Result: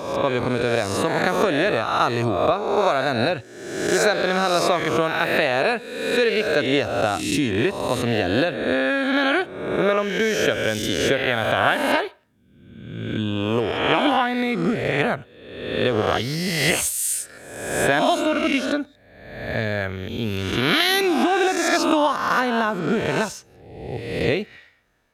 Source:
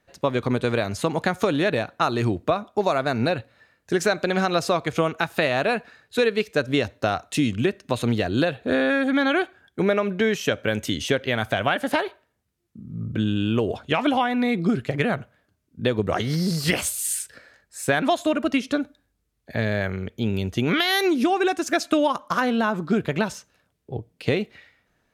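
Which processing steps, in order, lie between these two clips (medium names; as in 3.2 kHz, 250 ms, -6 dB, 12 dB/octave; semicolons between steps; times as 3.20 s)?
reverse spectral sustain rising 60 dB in 1.05 s; peaking EQ 170 Hz -4 dB 1.2 oct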